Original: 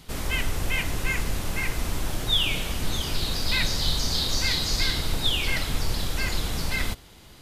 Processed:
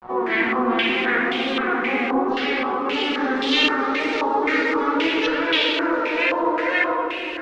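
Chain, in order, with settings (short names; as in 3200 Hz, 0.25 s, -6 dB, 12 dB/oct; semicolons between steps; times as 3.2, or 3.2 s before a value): vocoder on a gliding note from A#3, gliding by +7 st; in parallel at 0 dB: compressor, threshold -37 dBFS, peak gain reduction 15 dB; on the sum: wow and flutter 120 cents; harmoniser +7 st -1 dB; shoebox room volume 130 m³, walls hard, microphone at 0.61 m; soft clip -12.5 dBFS, distortion -19 dB; notches 50/100/150/200/250/300/350/400 Hz; bit-crush 6-bit; flange 0.73 Hz, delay 1.2 ms, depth 3.1 ms, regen +71%; stepped low-pass 3.8 Hz 990–3300 Hz; gain +2.5 dB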